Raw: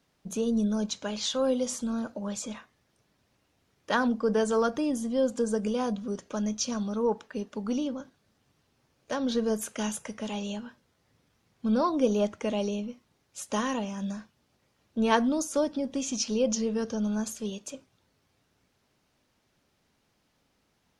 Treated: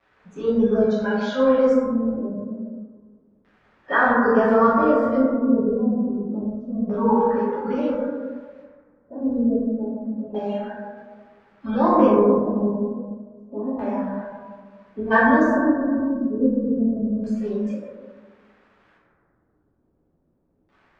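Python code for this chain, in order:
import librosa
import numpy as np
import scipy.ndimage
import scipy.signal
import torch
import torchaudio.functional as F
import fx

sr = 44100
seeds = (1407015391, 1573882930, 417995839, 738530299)

y = fx.spec_quant(x, sr, step_db=30)
y = fx.hum_notches(y, sr, base_hz=50, count=6)
y = fx.env_lowpass_down(y, sr, base_hz=310.0, full_db=-28.0, at=(13.95, 15.1), fade=0.02)
y = fx.dmg_crackle(y, sr, seeds[0], per_s=500.0, level_db=-42.0)
y = fx.filter_lfo_lowpass(y, sr, shape='square', hz=0.29, low_hz=300.0, high_hz=1900.0, q=1.2)
y = fx.rev_plate(y, sr, seeds[1], rt60_s=2.0, hf_ratio=0.3, predelay_ms=0, drr_db=-9.0)
y = fx.noise_reduce_blind(y, sr, reduce_db=8)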